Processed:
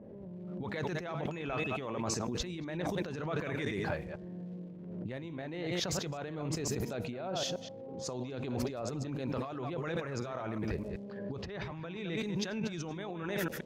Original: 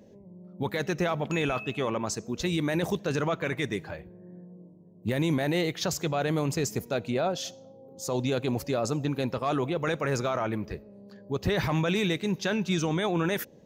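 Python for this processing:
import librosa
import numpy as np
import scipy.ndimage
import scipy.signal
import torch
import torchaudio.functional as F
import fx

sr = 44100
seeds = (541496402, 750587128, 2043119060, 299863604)

y = fx.reverse_delay(x, sr, ms=126, wet_db=-9)
y = fx.lowpass(y, sr, hz=3900.0, slope=6)
y = fx.dmg_crackle(y, sr, seeds[0], per_s=410.0, level_db=-58.0)
y = fx.over_compress(y, sr, threshold_db=-35.0, ratio=-1.0)
y = fx.env_lowpass(y, sr, base_hz=830.0, full_db=-29.5)
y = fx.pre_swell(y, sr, db_per_s=35.0)
y = y * librosa.db_to_amplitude(-3.5)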